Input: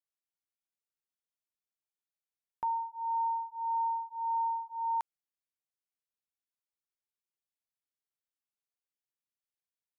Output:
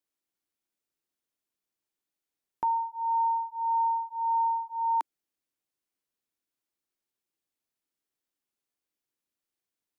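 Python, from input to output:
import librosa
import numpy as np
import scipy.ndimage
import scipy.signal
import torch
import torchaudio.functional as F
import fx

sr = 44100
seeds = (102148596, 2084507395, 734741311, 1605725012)

y = fx.peak_eq(x, sr, hz=310.0, db=9.0, octaves=0.89)
y = y * 10.0 ** (4.5 / 20.0)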